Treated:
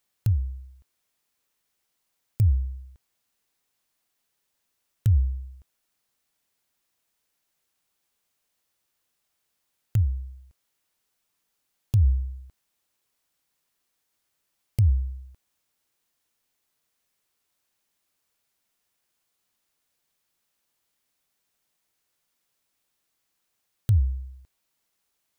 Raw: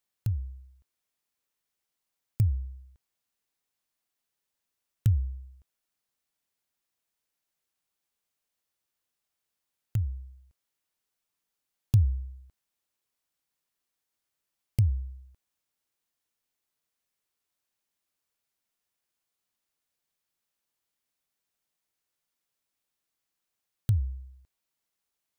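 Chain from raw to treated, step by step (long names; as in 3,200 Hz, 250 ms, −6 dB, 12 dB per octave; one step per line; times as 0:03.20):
brickwall limiter −21.5 dBFS, peak gain reduction 9.5 dB
level +7.5 dB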